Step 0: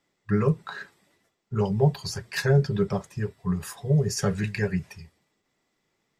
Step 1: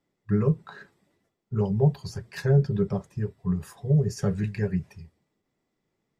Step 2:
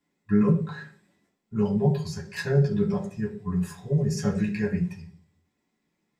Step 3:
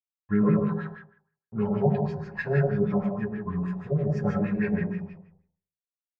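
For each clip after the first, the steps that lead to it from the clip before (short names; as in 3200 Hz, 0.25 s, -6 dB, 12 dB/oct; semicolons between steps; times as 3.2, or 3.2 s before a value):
tilt shelf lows +5.5 dB, about 740 Hz; gain -4.5 dB
reverb RT60 0.40 s, pre-delay 3 ms, DRR -3.5 dB
crossover distortion -49.5 dBFS; digital reverb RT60 0.59 s, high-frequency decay 0.7×, pre-delay 60 ms, DRR 0 dB; LFO low-pass sine 6.3 Hz 660–2400 Hz; gain -3 dB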